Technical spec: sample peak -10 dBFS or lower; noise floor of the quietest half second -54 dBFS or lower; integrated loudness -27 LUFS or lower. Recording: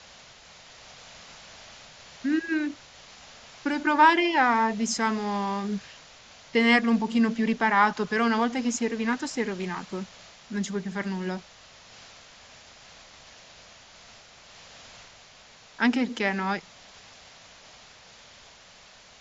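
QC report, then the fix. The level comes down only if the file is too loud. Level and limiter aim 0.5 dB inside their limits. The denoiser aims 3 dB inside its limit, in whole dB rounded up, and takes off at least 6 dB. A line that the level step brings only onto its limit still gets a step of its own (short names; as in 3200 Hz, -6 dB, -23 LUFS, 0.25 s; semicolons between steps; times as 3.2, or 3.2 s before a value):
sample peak -6.0 dBFS: fail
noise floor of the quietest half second -52 dBFS: fail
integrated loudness -25.5 LUFS: fail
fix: denoiser 6 dB, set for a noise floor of -52 dBFS; gain -2 dB; limiter -10.5 dBFS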